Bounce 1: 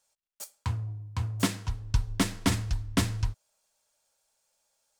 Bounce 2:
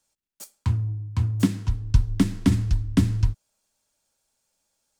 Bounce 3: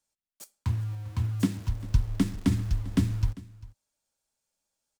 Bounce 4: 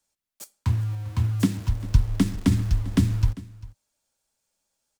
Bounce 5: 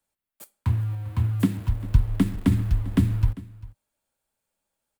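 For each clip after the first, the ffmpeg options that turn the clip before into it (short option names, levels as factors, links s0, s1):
-filter_complex "[0:a]lowshelf=f=410:t=q:w=1.5:g=7.5,acrossover=split=290[s0][s1];[s1]acompressor=threshold=0.0398:ratio=4[s2];[s0][s2]amix=inputs=2:normalize=0"
-filter_complex "[0:a]asplit=2[s0][s1];[s1]acrusher=bits=5:mix=0:aa=0.000001,volume=0.501[s2];[s0][s2]amix=inputs=2:normalize=0,aecho=1:1:397:0.106,volume=0.376"
-filter_complex "[0:a]acrossover=split=220|3000[s0][s1][s2];[s1]acompressor=threshold=0.0501:ratio=6[s3];[s0][s3][s2]amix=inputs=3:normalize=0,volume=1.78"
-af "equalizer=f=5800:w=1.2:g=-12"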